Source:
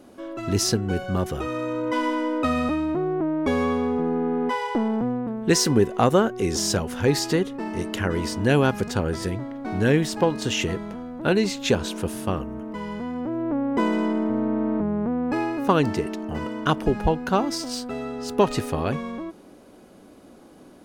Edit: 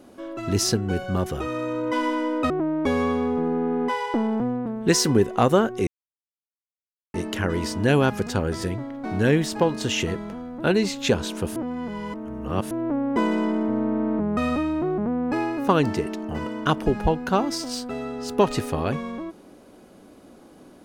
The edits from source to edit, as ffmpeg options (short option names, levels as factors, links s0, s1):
-filter_complex "[0:a]asplit=8[s0][s1][s2][s3][s4][s5][s6][s7];[s0]atrim=end=2.502[s8];[s1]atrim=start=3.108:end=6.48,asetpts=PTS-STARTPTS,afade=t=out:st=3.368:d=0.004:c=hsin[s9];[s2]atrim=start=6.48:end=7.75,asetpts=PTS-STARTPTS,volume=0[s10];[s3]atrim=start=7.75:end=12.172,asetpts=PTS-STARTPTS,afade=t=in:d=0.004:c=hsin[s11];[s4]atrim=start=12.168:end=13.322,asetpts=PTS-STARTPTS,areverse[s12];[s5]atrim=start=13.318:end=14.982[s13];[s6]atrim=start=2.498:end=3.112[s14];[s7]atrim=start=14.978[s15];[s9][s10][s11]concat=n=3:v=0:a=1[s16];[s8][s16]acrossfade=d=0.004:c1=hsin:c2=hsin[s17];[s17][s12]acrossfade=d=0.004:c1=hsin:c2=hsin[s18];[s18][s13]acrossfade=d=0.004:c1=hsin:c2=hsin[s19];[s19][s14]acrossfade=d=0.004:c1=hsin:c2=hsin[s20];[s20][s15]acrossfade=d=0.004:c1=hsin:c2=hsin"